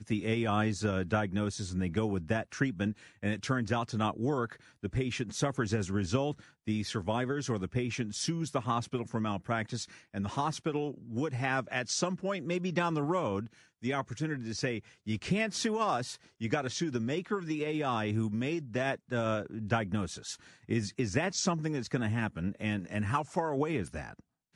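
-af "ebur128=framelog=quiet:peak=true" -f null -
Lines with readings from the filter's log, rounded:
Integrated loudness:
  I:         -33.1 LUFS
  Threshold: -43.2 LUFS
Loudness range:
  LRA:         1.5 LU
  Threshold: -53.3 LUFS
  LRA low:   -34.1 LUFS
  LRA high:  -32.6 LUFS
True peak:
  Peak:      -14.2 dBFS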